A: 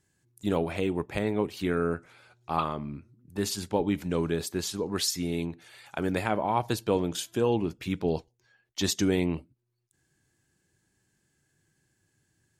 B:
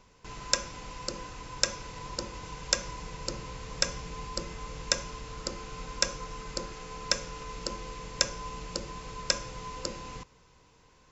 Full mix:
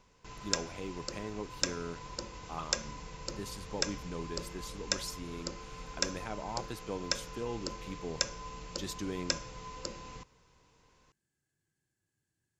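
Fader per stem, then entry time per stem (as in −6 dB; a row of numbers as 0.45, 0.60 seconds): −13.0, −5.0 decibels; 0.00, 0.00 seconds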